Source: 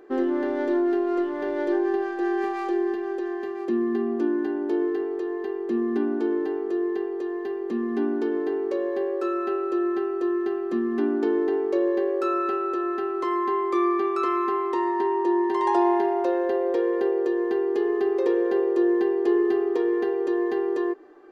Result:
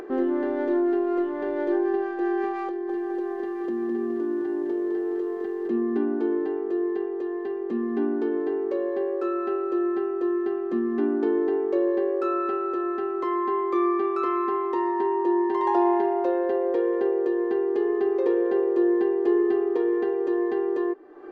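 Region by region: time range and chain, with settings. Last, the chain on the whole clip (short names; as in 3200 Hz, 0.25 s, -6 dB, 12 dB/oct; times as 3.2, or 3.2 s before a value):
2.68–5.68 notch 2600 Hz, Q 7.1 + compressor, threshold -27 dBFS + lo-fi delay 0.209 s, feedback 55%, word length 9-bit, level -5 dB
whole clip: LPF 1900 Hz 6 dB/oct; upward compressor, threshold -29 dBFS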